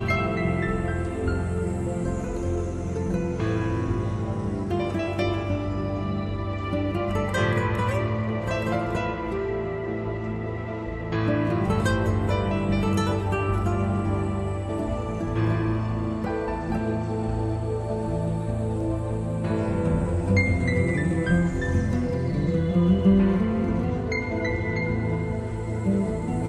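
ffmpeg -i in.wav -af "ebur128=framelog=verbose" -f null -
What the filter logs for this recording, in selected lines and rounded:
Integrated loudness:
  I:         -25.8 LUFS
  Threshold: -35.8 LUFS
Loudness range:
  LRA:         4.5 LU
  Threshold: -45.7 LUFS
  LRA low:   -27.5 LUFS
  LRA high:  -23.1 LUFS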